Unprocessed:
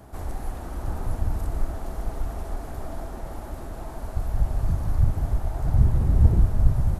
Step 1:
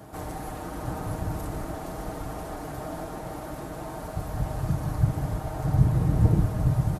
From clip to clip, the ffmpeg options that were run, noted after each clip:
-af "highpass=85,aecho=1:1:6.5:0.5,volume=2.5dB"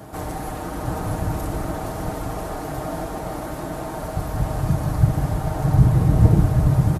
-af "aecho=1:1:772:0.398,volume=6dB"

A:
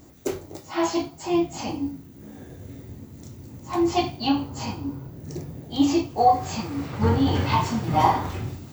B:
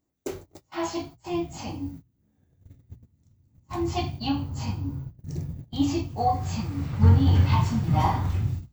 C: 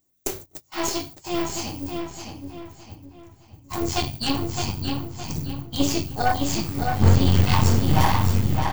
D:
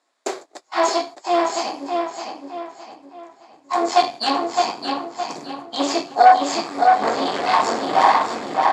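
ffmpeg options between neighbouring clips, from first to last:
-af "agate=range=-24dB:threshold=-36dB:ratio=16:detection=peak,bandreject=f=60:t=h:w=6,bandreject=f=120:t=h:w=6,asubboost=boost=5.5:cutoff=160,volume=-5dB"
-filter_complex "[0:a]crystalizer=i=3.5:c=0,aeval=exprs='0.531*(cos(1*acos(clip(val(0)/0.531,-1,1)))-cos(1*PI/2))+0.075*(cos(8*acos(clip(val(0)/0.531,-1,1)))-cos(8*PI/2))':c=same,asplit=2[a][b];[b]adelay=614,lowpass=f=4.8k:p=1,volume=-4.5dB,asplit=2[c][d];[d]adelay=614,lowpass=f=4.8k:p=1,volume=0.39,asplit=2[e][f];[f]adelay=614,lowpass=f=4.8k:p=1,volume=0.39,asplit=2[g][h];[h]adelay=614,lowpass=f=4.8k:p=1,volume=0.39,asplit=2[i][j];[j]adelay=614,lowpass=f=4.8k:p=1,volume=0.39[k];[c][e][g][i][k]amix=inputs=5:normalize=0[l];[a][l]amix=inputs=2:normalize=0"
-filter_complex "[0:a]asplit=2[a][b];[b]aeval=exprs='0.15*(abs(mod(val(0)/0.15+3,4)-2)-1)':c=same,volume=-7dB[c];[a][c]amix=inputs=2:normalize=0,acrusher=bits=10:mix=0:aa=0.000001,highpass=f=320:w=0.5412,highpass=f=320:w=1.3066,equalizer=f=340:t=q:w=4:g=-3,equalizer=f=700:t=q:w=4:g=9,equalizer=f=1.1k:t=q:w=4:g=6,equalizer=f=1.7k:t=q:w=4:g=3,equalizer=f=2.9k:t=q:w=4:g=-7,equalizer=f=6k:t=q:w=4:g=-9,lowpass=f=6.9k:w=0.5412,lowpass=f=6.9k:w=1.3066,volume=3.5dB"

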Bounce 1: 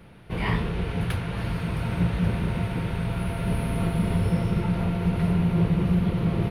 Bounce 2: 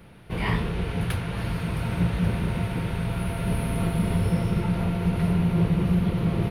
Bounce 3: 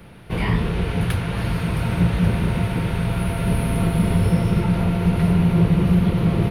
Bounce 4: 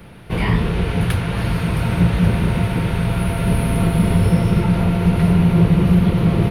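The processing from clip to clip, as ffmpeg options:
-af "highshelf=f=6.6k:g=5"
-filter_complex "[0:a]acrossover=split=410[a][b];[b]acompressor=threshold=-32dB:ratio=3[c];[a][c]amix=inputs=2:normalize=0,volume=5.5dB"
-af "volume=3dB" -ar 48000 -c:a aac -b:a 192k

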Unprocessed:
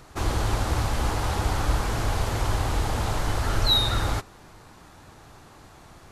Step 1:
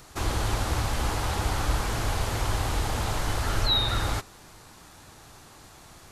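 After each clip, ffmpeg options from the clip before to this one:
-filter_complex "[0:a]acrossover=split=3400[a][b];[b]acompressor=threshold=-42dB:ratio=4:attack=1:release=60[c];[a][c]amix=inputs=2:normalize=0,highshelf=f=3k:g=9.5,volume=-2.5dB"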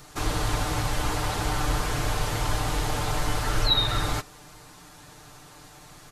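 -af "aecho=1:1:6.7:0.65"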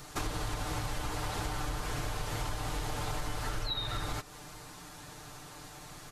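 -af "acompressor=threshold=-31dB:ratio=10"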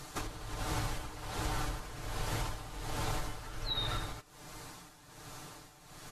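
-af "tremolo=f=1.3:d=0.72,volume=1dB" -ar 32000 -c:a aac -b:a 64k

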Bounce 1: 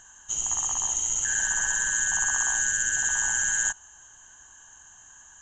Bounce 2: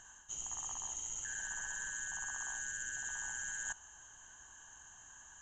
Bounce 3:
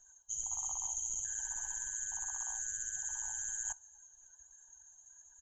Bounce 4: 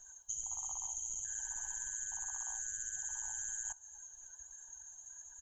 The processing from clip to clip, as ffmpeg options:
-af "highshelf=f=5.8k:g=-5,areverse,acompressor=threshold=-36dB:ratio=6,areverse,volume=-3.5dB"
-filter_complex "[0:a]afftdn=nr=19:nf=-50,firequalizer=gain_entry='entry(110,0);entry(280,-10);entry(470,7);entry(2200,-20);entry(3900,7);entry(8200,1)':delay=0.05:min_phase=1,acrossover=split=770[a][b];[a]acrusher=bits=3:mode=log:mix=0:aa=0.000001[c];[c][b]amix=inputs=2:normalize=0,volume=1.5dB"
-af "acompressor=threshold=-45dB:ratio=6,volume=6.5dB"

